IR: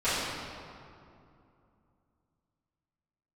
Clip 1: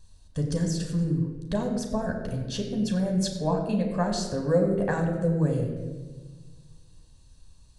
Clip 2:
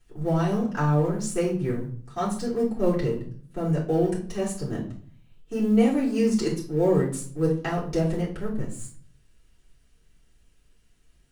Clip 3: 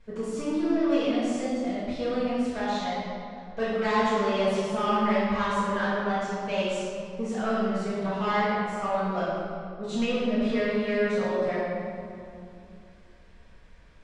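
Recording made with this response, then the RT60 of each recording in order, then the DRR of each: 3; 1.3, 0.50, 2.6 s; 2.0, -8.5, -17.0 dB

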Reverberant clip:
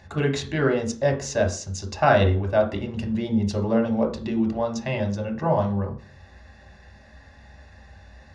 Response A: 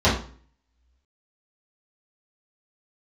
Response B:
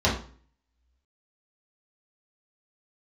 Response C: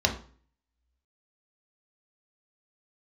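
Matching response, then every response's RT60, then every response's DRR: C; 0.45, 0.45, 0.45 s; -10.5, -6.0, 2.5 dB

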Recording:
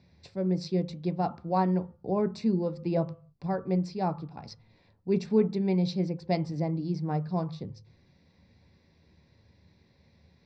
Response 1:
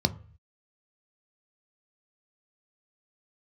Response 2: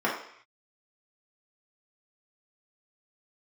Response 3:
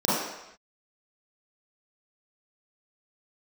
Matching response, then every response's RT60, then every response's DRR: 1; 0.45 s, 0.65 s, not exponential; 9.5, -6.0, -10.0 dB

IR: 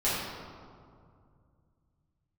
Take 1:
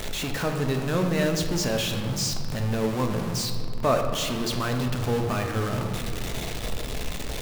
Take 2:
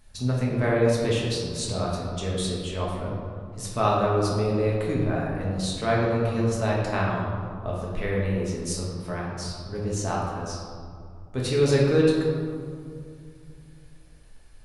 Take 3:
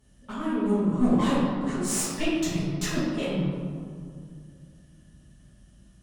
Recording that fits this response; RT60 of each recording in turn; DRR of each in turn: 3; 2.3, 2.2, 2.2 s; 3.0, -5.0, -12.0 dB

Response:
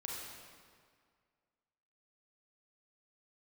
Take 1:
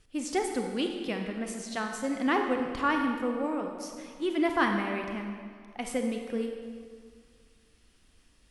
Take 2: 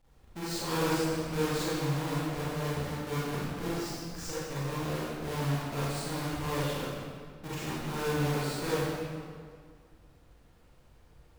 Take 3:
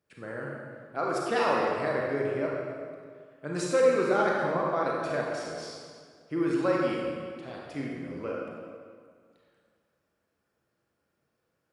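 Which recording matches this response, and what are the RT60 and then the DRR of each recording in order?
3; 1.9, 2.0, 2.0 s; 3.0, -10.5, -3.5 dB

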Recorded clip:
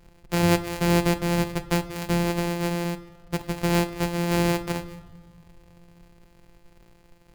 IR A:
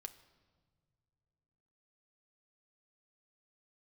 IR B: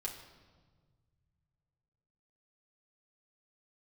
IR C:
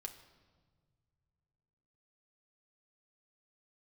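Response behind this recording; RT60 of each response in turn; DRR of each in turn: A; not exponential, 1.5 s, 1.6 s; 8.0, -2.5, 3.5 dB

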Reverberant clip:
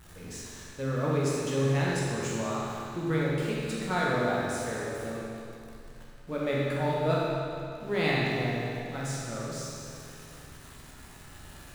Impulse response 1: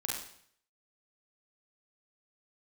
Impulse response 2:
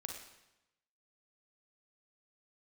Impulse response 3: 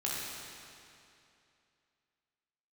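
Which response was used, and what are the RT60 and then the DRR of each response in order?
3; 0.60, 0.95, 2.6 s; -3.5, 2.0, -6.0 dB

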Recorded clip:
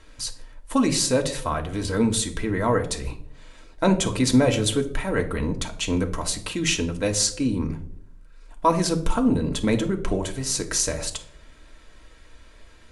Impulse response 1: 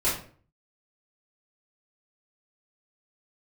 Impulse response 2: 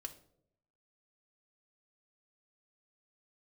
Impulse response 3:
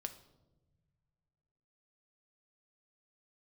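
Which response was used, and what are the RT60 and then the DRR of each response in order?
2; 0.45 s, 0.70 s, not exponential; -12.5, 3.5, 7.5 dB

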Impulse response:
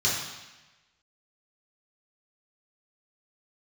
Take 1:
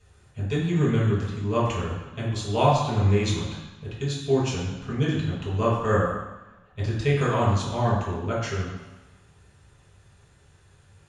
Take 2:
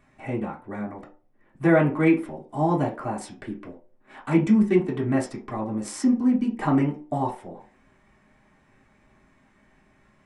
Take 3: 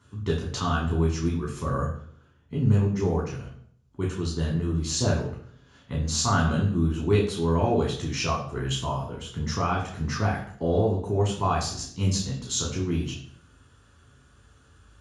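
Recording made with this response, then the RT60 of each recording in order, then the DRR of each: 1; 1.1 s, not exponential, 0.60 s; -7.0, -5.5, -3.0 dB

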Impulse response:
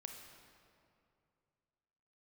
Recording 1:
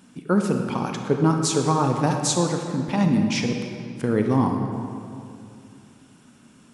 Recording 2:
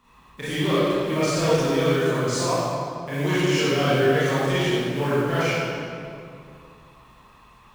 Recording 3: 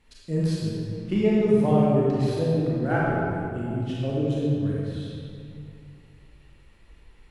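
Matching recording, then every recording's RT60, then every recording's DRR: 1; 2.5, 2.5, 2.5 s; 3.0, -12.0, -6.5 dB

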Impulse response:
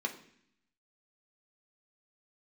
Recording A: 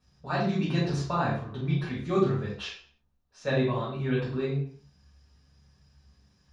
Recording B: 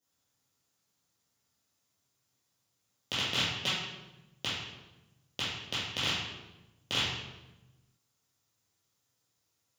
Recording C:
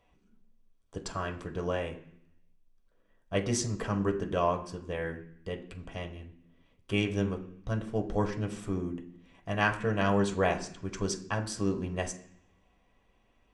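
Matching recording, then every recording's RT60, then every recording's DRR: C; 0.45, 1.0, 0.65 s; -6.0, -9.5, 2.0 dB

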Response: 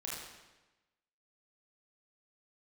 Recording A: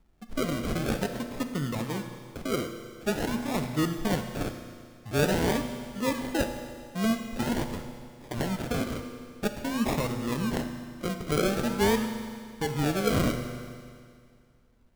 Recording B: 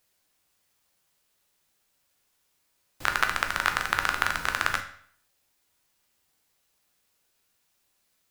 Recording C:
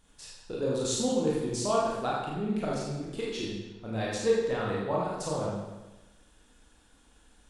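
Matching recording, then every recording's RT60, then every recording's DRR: C; 2.1, 0.60, 1.1 s; 6.0, 5.0, -5.5 dB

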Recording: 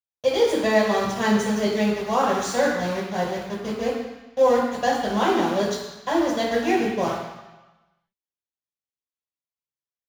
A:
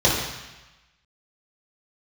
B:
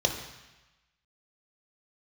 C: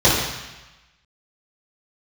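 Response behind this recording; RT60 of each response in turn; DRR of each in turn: A; 1.1, 1.1, 1.1 s; -7.0, 3.0, -11.0 dB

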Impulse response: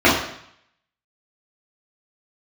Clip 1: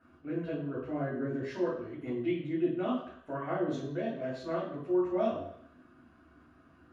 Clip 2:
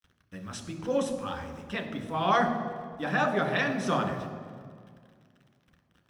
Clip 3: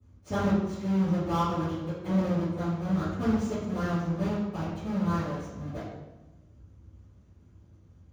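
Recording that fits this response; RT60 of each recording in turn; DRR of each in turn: 1; 0.70, 2.0, 1.1 s; -9.0, 3.5, -19.0 dB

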